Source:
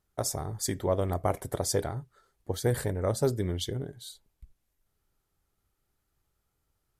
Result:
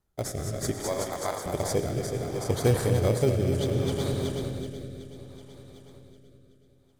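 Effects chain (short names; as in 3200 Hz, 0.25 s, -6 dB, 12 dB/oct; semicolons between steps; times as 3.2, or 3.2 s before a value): regenerating reverse delay 0.188 s, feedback 77%, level -5.5 dB; 0.71–1.46 HPF 1100 Hz 6 dB/oct; in parallel at -4 dB: sample-and-hold 16×; on the sum: digital reverb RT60 3.1 s, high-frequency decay 0.7×, pre-delay 65 ms, DRR 6.5 dB; rotary speaker horn 0.65 Hz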